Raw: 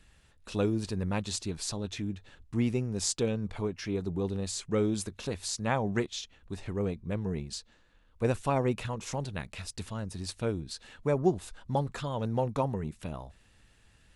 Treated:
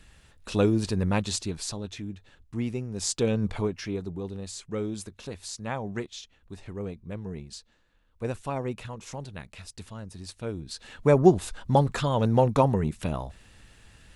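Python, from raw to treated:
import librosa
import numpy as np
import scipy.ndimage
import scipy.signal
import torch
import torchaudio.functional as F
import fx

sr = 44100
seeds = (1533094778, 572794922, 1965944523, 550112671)

y = fx.gain(x, sr, db=fx.line((1.16, 6.0), (2.01, -2.0), (2.89, -2.0), (3.44, 7.5), (4.22, -3.5), (10.42, -3.5), (11.1, 8.5)))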